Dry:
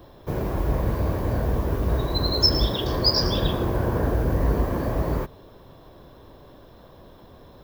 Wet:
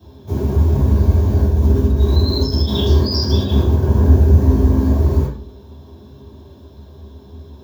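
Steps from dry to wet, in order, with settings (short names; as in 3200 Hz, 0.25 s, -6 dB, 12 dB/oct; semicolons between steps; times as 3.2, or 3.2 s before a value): 1.43–3.88 negative-ratio compressor -25 dBFS, ratio -1; reverb RT60 0.40 s, pre-delay 3 ms, DRR -10.5 dB; gain -12.5 dB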